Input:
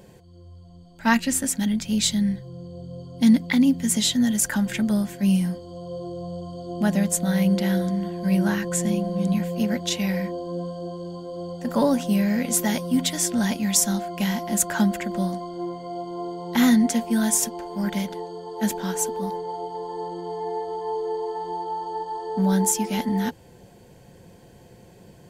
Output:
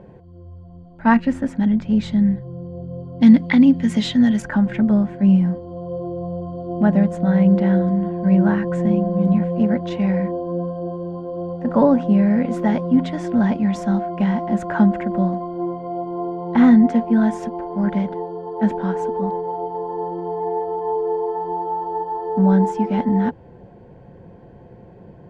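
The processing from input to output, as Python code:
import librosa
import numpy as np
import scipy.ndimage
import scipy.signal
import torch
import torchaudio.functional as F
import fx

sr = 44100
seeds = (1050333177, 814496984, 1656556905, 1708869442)

y = fx.lowpass(x, sr, hz=fx.steps((0.0, 1300.0), (3.21, 2300.0), (4.42, 1300.0)), slope=12)
y = y * 10.0 ** (6.0 / 20.0)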